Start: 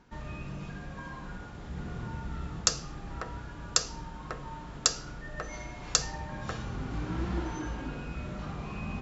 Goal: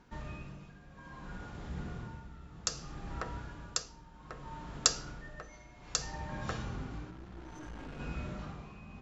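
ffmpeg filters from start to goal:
ffmpeg -i in.wav -filter_complex "[0:a]tremolo=f=0.62:d=0.77,asettb=1/sr,asplit=3[link_01][link_02][link_03];[link_01]atrim=end=7.104[link_04];[link_02]atrim=start=7.1:end=8,asetpts=PTS-STARTPTS,afade=type=in:duration=0.004:curve=qsin,afade=type=out:start_time=0.896:duration=0.004:curve=qsin,aeval=exprs='(tanh(112*val(0)+0.55)-tanh(0.55))/112':channel_layout=same[link_05];[link_03]atrim=start=7.996[link_06];[link_04][link_05]acrossfade=duration=0.004:curve1=hsin:curve2=qsin[link_07];[link_07][link_06]acrossfade=duration=0.004:curve1=qsin:curve2=hsin,volume=-1dB" out.wav

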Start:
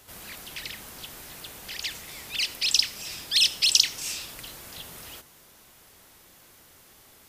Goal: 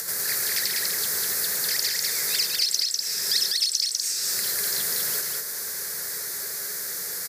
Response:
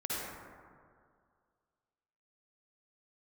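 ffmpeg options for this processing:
-filter_complex "[0:a]afreqshift=68,firequalizer=gain_entry='entry(120,0);entry(190,5);entry(270,-6);entry(400,10);entry(750,-5);entry(1100,-5);entry(1700,5);entry(2900,-17);entry(4400,3)':delay=0.05:min_phase=1,asplit=2[link_01][link_02];[link_02]acompressor=mode=upward:threshold=-31dB:ratio=2.5,volume=-1.5dB[link_03];[link_01][link_03]amix=inputs=2:normalize=0,tiltshelf=frequency=780:gain=-8.5,acompressor=threshold=-23dB:ratio=10,asplit=2[link_04][link_05];[link_05]aecho=0:1:107.9|198.3:0.316|0.794[link_06];[link_04][link_06]amix=inputs=2:normalize=0"

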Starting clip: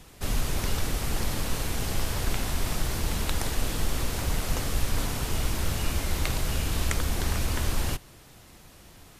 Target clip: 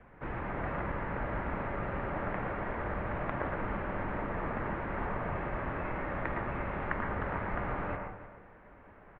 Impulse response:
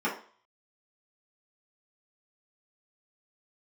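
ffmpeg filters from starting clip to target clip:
-filter_complex "[0:a]asplit=2[link_01][link_02];[link_02]adelay=309,volume=-13dB,highshelf=frequency=4000:gain=-6.95[link_03];[link_01][link_03]amix=inputs=2:normalize=0,asplit=2[link_04][link_05];[1:a]atrim=start_sample=2205,lowshelf=frequency=400:gain=-9,adelay=108[link_06];[link_05][link_06]afir=irnorm=-1:irlink=0,volume=-11.5dB[link_07];[link_04][link_07]amix=inputs=2:normalize=0,highpass=frequency=210:width_type=q:width=0.5412,highpass=frequency=210:width_type=q:width=1.307,lowpass=frequency=2200:width_type=q:width=0.5176,lowpass=frequency=2200:width_type=q:width=0.7071,lowpass=frequency=2200:width_type=q:width=1.932,afreqshift=-270"

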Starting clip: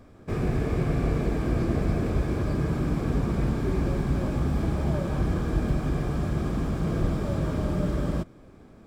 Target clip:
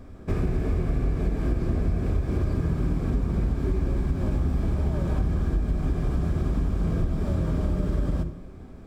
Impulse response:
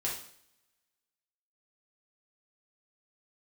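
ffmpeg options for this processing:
-filter_complex "[0:a]lowshelf=frequency=92:gain=7.5,asplit=2[link_01][link_02];[1:a]atrim=start_sample=2205,lowshelf=frequency=460:gain=9[link_03];[link_02][link_03]afir=irnorm=-1:irlink=0,volume=-12dB[link_04];[link_01][link_04]amix=inputs=2:normalize=0,acompressor=threshold=-21dB:ratio=6"

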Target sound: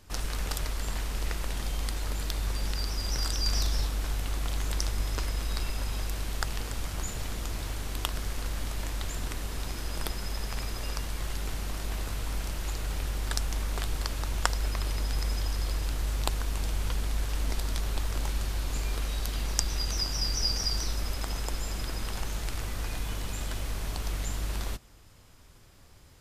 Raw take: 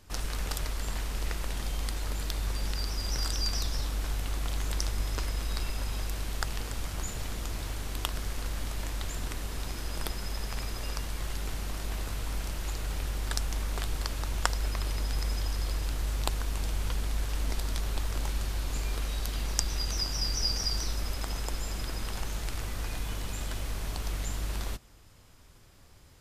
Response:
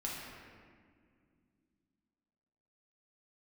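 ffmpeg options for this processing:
-filter_complex "[0:a]asettb=1/sr,asplit=3[link_01][link_02][link_03];[link_01]atrim=end=3.424[link_04];[link_02]atrim=start=3.42:end=3.87,asetpts=PTS-STARTPTS,afade=type=in:duration=0.004:curve=qsin,afade=type=out:start_time=0.446:duration=0.004:curve=qsin,asplit=2[link_05][link_06];[link_06]adelay=39,volume=-5.5dB[link_07];[link_05][link_07]amix=inputs=2:normalize=0,atrim=end_sample=19845[link_08];[link_03]atrim=start=3.866[link_09];[link_04][link_08]acrossfade=duration=0.004:curve1=hsin:curve2=qsin[link_10];[link_10][link_09]acrossfade=duration=0.004:curve1=qsin:curve2=hsin,volume=1dB"

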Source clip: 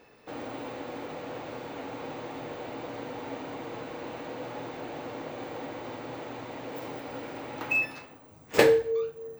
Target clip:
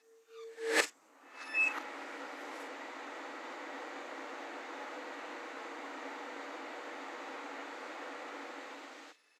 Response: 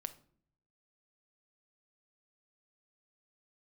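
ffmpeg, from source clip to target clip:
-filter_complex "[0:a]areverse,aderivative,acrossover=split=1900[link_01][link_02];[link_01]dynaudnorm=framelen=150:gausssize=11:maxgain=13dB[link_03];[link_02]asplit=2[link_04][link_05];[link_05]adelay=42,volume=-7.5dB[link_06];[link_04][link_06]amix=inputs=2:normalize=0[link_07];[link_03][link_07]amix=inputs=2:normalize=0,highpass=frequency=220:width=0.5412,highpass=frequency=220:width=1.3066,equalizer=frequency=300:width_type=q:width=4:gain=8,equalizer=frequency=1300:width_type=q:width=4:gain=4,equalizer=frequency=1900:width_type=q:width=4:gain=5,lowpass=frequency=9600:width=0.5412,lowpass=frequency=9600:width=1.3066"

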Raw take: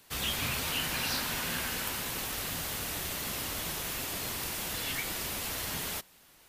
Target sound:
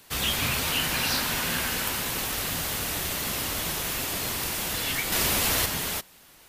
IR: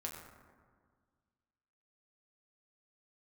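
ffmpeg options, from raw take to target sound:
-filter_complex "[0:a]asettb=1/sr,asplit=3[link_01][link_02][link_03];[link_01]atrim=end=5.124[link_04];[link_02]atrim=start=5.12:end=5.66,asetpts=PTS-STARTPTS,afade=type=in:duration=0.004:curve=qsin,afade=type=out:start_time=0.536:duration=0.004:curve=qsin,acontrast=38[link_05];[link_03]atrim=start=5.656[link_06];[link_04][link_05]acrossfade=duration=0.004:curve1=hsin:curve2=qsin[link_07];[link_07][link_06]acrossfade=duration=0.004:curve1=qsin:curve2=hsin,volume=6dB"

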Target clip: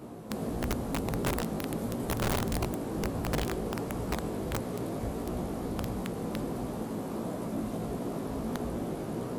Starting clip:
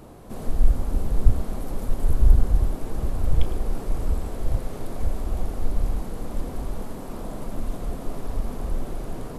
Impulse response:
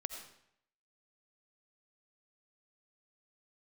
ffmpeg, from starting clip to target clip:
-filter_complex "[0:a]highpass=170,lowshelf=frequency=370:gain=9,asoftclip=type=hard:threshold=-20dB,flanger=delay=16.5:depth=2.5:speed=1.5,aeval=exprs='(mod(16.8*val(0)+1,2)-1)/16.8':channel_layout=same,asplit=2[link_01][link_02];[1:a]atrim=start_sample=2205,asetrate=31752,aresample=44100[link_03];[link_02][link_03]afir=irnorm=-1:irlink=0,volume=-16dB[link_04];[link_01][link_04]amix=inputs=2:normalize=0"

